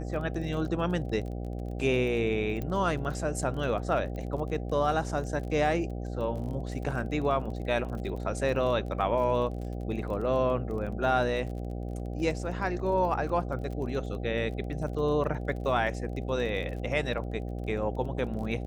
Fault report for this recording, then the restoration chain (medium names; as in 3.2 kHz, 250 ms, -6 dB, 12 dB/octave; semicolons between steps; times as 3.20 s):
buzz 60 Hz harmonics 13 -35 dBFS
crackle 30 per s -38 dBFS
2.62 s: pop -22 dBFS
4.16 s: pop -28 dBFS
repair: de-click; de-hum 60 Hz, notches 13